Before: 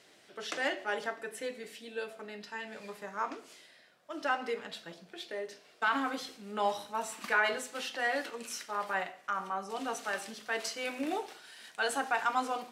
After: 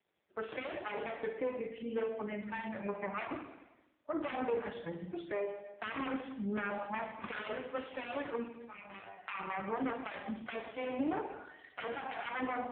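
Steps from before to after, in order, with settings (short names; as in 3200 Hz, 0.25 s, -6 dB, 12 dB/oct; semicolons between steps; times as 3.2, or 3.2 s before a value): self-modulated delay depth 0.63 ms; 10.95–11.65 HPF 50 Hz 12 dB/oct; spectral noise reduction 26 dB; 4.28–4.85 bell 320 Hz -> 1500 Hz +6 dB 3 oct; limiter -28 dBFS, peak gain reduction 11 dB; compressor 2.5:1, threshold -46 dBFS, peak gain reduction 9.5 dB; air absorption 440 m; 8.45–9.17 resonator 98 Hz, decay 0.28 s, harmonics all, mix 100%; Schroeder reverb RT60 1.1 s, DRR 5.5 dB; gain +12.5 dB; AMR-NB 5.15 kbps 8000 Hz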